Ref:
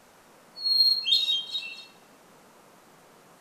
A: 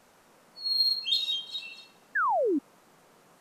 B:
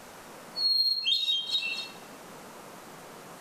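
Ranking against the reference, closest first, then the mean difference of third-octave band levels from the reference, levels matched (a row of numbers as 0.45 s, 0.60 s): A, B; 3.0 dB, 8.0 dB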